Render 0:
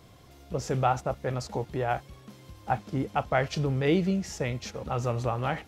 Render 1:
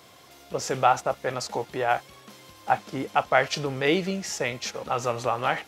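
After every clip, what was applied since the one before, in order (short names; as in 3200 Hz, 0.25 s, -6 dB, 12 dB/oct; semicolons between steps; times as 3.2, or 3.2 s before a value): HPF 730 Hz 6 dB/oct; gain +8 dB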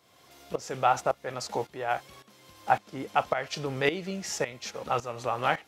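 tremolo saw up 1.8 Hz, depth 80%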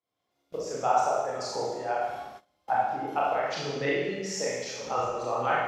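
formant sharpening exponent 1.5; Schroeder reverb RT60 1.2 s, combs from 25 ms, DRR -6 dB; gate -39 dBFS, range -23 dB; gain -5.5 dB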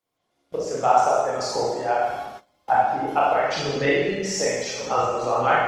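gain +7 dB; Opus 20 kbps 48000 Hz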